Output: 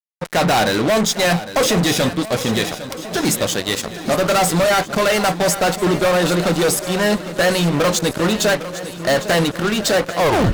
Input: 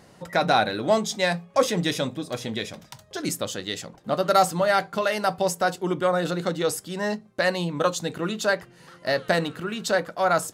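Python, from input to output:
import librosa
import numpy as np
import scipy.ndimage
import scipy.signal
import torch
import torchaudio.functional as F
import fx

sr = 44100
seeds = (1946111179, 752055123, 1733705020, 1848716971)

y = fx.tape_stop_end(x, sr, length_s=0.33)
y = fx.fuzz(y, sr, gain_db=30.0, gate_db=-37.0)
y = fx.echo_swing(y, sr, ms=1341, ratio=1.5, feedback_pct=47, wet_db=-13.5)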